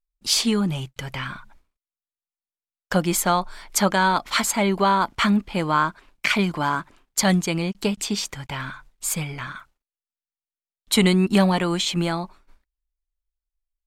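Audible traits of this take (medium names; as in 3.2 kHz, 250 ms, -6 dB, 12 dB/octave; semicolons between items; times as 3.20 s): noise floor -96 dBFS; spectral tilt -4.0 dB/octave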